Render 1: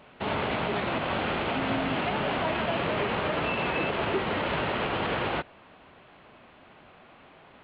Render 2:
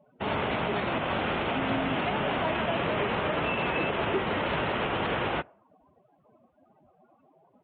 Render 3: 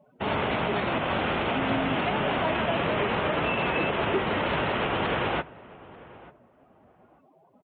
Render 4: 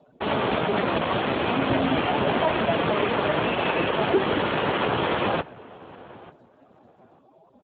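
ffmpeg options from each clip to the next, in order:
-af "afftdn=nr=30:nf=-45"
-filter_complex "[0:a]asplit=2[a][b];[b]adelay=890,lowpass=f=1.4k:p=1,volume=-19dB,asplit=2[c][d];[d]adelay=890,lowpass=f=1.4k:p=1,volume=0.21[e];[a][c][e]amix=inputs=3:normalize=0,volume=2dB"
-af "volume=5dB" -ar 16000 -c:a libspeex -b:a 8k

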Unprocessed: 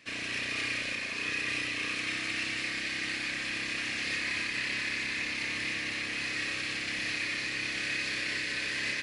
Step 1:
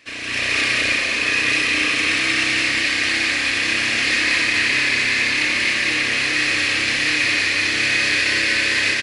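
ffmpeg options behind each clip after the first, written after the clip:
-af "equalizer=f=170:t=o:w=0.52:g=-12,aecho=1:1:201.2|253.6:0.631|0.316,dynaudnorm=f=100:g=7:m=7dB,volume=6dB"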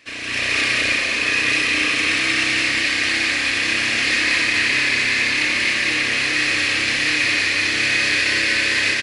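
-af anull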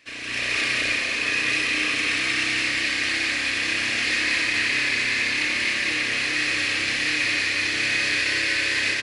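-af "bandreject=f=45.89:t=h:w=4,bandreject=f=91.78:t=h:w=4,bandreject=f=137.67:t=h:w=4,bandreject=f=183.56:t=h:w=4,bandreject=f=229.45:t=h:w=4,bandreject=f=275.34:t=h:w=4,bandreject=f=321.23:t=h:w=4,bandreject=f=367.12:t=h:w=4,bandreject=f=413.01:t=h:w=4,bandreject=f=458.9:t=h:w=4,bandreject=f=504.79:t=h:w=4,bandreject=f=550.68:t=h:w=4,bandreject=f=596.57:t=h:w=4,bandreject=f=642.46:t=h:w=4,bandreject=f=688.35:t=h:w=4,bandreject=f=734.24:t=h:w=4,bandreject=f=780.13:t=h:w=4,bandreject=f=826.02:t=h:w=4,bandreject=f=871.91:t=h:w=4,bandreject=f=917.8:t=h:w=4,bandreject=f=963.69:t=h:w=4,bandreject=f=1.00958k:t=h:w=4,bandreject=f=1.05547k:t=h:w=4,bandreject=f=1.10136k:t=h:w=4,bandreject=f=1.14725k:t=h:w=4,bandreject=f=1.19314k:t=h:w=4,bandreject=f=1.23903k:t=h:w=4,bandreject=f=1.28492k:t=h:w=4,bandreject=f=1.33081k:t=h:w=4,volume=-4.5dB"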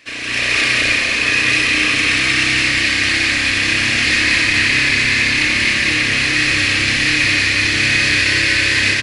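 -af "asubboost=boost=3:cutoff=240,volume=8.5dB"

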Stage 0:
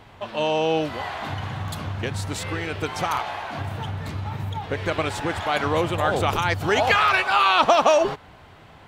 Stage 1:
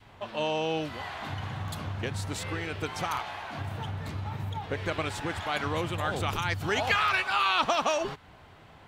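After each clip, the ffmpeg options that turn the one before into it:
-af "adynamicequalizer=threshold=0.02:dfrequency=580:dqfactor=0.76:tfrequency=580:tqfactor=0.76:attack=5:release=100:ratio=0.375:range=3.5:mode=cutabove:tftype=bell,volume=-5dB"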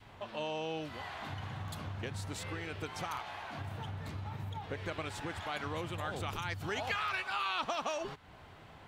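-af "acompressor=threshold=-45dB:ratio=1.5,volume=-1.5dB"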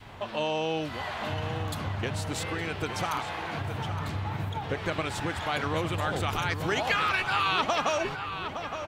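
-filter_complex "[0:a]asplit=2[a][b];[b]adelay=865,lowpass=f=3.5k:p=1,volume=-8.5dB,asplit=2[c][d];[d]adelay=865,lowpass=f=3.5k:p=1,volume=0.54,asplit=2[e][f];[f]adelay=865,lowpass=f=3.5k:p=1,volume=0.54,asplit=2[g][h];[h]adelay=865,lowpass=f=3.5k:p=1,volume=0.54,asplit=2[i][j];[j]adelay=865,lowpass=f=3.5k:p=1,volume=0.54,asplit=2[k][l];[l]adelay=865,lowpass=f=3.5k:p=1,volume=0.54[m];[a][c][e][g][i][k][m]amix=inputs=7:normalize=0,volume=8.5dB"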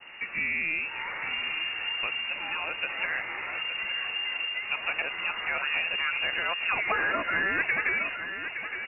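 -af "lowpass=f=2.5k:t=q:w=0.5098,lowpass=f=2.5k:t=q:w=0.6013,lowpass=f=2.5k:t=q:w=0.9,lowpass=f=2.5k:t=q:w=2.563,afreqshift=-2900"

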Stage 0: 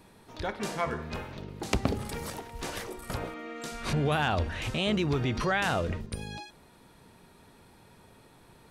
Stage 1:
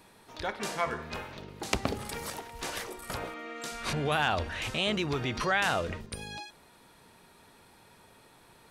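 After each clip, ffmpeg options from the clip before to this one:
-af "lowshelf=f=420:g=-8.5,volume=2dB"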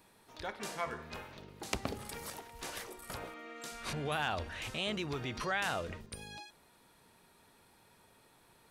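-af "highshelf=f=11k:g=6,volume=-7dB"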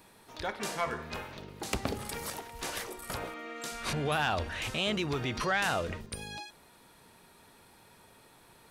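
-af "asoftclip=type=tanh:threshold=-24dB,volume=6dB"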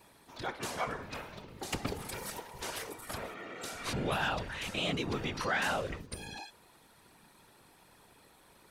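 -af "afftfilt=real='hypot(re,im)*cos(2*PI*random(0))':imag='hypot(re,im)*sin(2*PI*random(1))':win_size=512:overlap=0.75,volume=3.5dB"

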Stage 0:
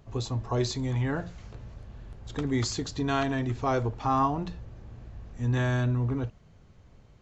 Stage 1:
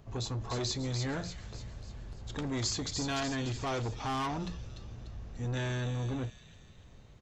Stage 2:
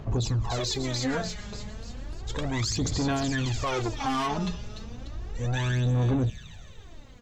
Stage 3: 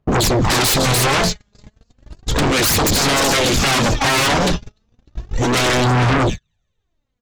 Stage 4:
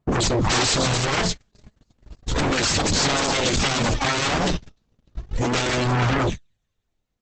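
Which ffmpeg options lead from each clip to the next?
-filter_complex "[0:a]acrossover=split=2600[a][b];[a]asoftclip=type=tanh:threshold=-31.5dB[c];[b]asplit=7[d][e][f][g][h][i][j];[e]adelay=295,afreqshift=42,volume=-4.5dB[k];[f]adelay=590,afreqshift=84,volume=-10.7dB[l];[g]adelay=885,afreqshift=126,volume=-16.9dB[m];[h]adelay=1180,afreqshift=168,volume=-23.1dB[n];[i]adelay=1475,afreqshift=210,volume=-29.3dB[o];[j]adelay=1770,afreqshift=252,volume=-35.5dB[p];[d][k][l][m][n][o][p]amix=inputs=7:normalize=0[q];[c][q]amix=inputs=2:normalize=0"
-af "aphaser=in_gain=1:out_gain=1:delay=4.9:decay=0.67:speed=0.33:type=sinusoidal,alimiter=level_in=2.5dB:limit=-24dB:level=0:latency=1:release=28,volume=-2.5dB,volume=6dB"
-af "agate=range=-48dB:threshold=-31dB:ratio=16:detection=peak,aeval=exprs='0.1*sin(PI/2*3.55*val(0)/0.1)':c=same,volume=7.5dB"
-af "volume=-4.5dB" -ar 48000 -c:a libopus -b:a 10k

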